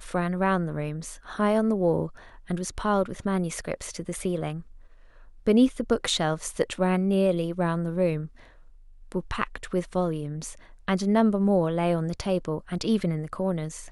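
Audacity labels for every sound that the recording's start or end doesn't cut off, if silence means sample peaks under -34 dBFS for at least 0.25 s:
2.490000	4.610000	sound
5.470000	8.260000	sound
9.120000	10.530000	sound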